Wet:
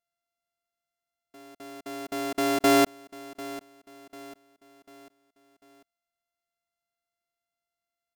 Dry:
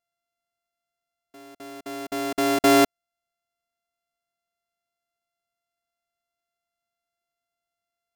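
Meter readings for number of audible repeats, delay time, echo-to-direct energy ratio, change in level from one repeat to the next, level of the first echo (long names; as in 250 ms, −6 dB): 3, 745 ms, −16.5 dB, −7.0 dB, −17.5 dB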